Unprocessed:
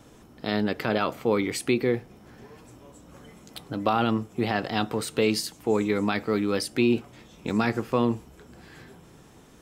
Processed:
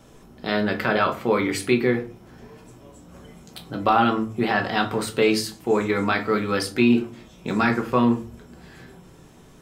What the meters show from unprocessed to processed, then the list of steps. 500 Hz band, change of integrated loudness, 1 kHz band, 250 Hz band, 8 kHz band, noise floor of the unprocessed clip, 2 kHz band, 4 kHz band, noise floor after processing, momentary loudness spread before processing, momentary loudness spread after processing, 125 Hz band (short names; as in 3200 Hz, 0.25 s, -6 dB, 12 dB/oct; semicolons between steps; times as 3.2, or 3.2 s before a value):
+3.0 dB, +4.0 dB, +6.5 dB, +3.5 dB, +1.5 dB, -52 dBFS, +6.5 dB, +2.5 dB, -49 dBFS, 6 LU, 9 LU, +2.0 dB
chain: dynamic EQ 1500 Hz, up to +7 dB, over -42 dBFS, Q 1.1; shoebox room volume 200 m³, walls furnished, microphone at 1.1 m